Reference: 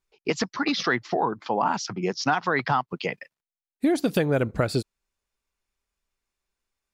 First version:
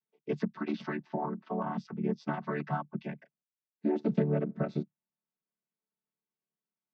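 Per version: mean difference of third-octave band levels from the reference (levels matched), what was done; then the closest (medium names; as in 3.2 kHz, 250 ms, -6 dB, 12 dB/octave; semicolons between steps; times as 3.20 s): 8.0 dB: vocoder on a held chord major triad, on D3; distance through air 170 m; trim -6.5 dB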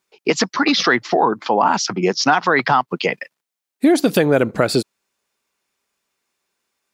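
1.5 dB: high-pass 190 Hz 12 dB/octave; in parallel at -2 dB: peak limiter -21 dBFS, peak gain reduction 11.5 dB; on the sum: trim +6 dB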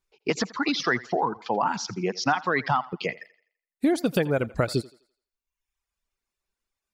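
2.5 dB: reverb removal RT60 0.95 s; on a send: thinning echo 84 ms, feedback 39%, high-pass 320 Hz, level -19 dB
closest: second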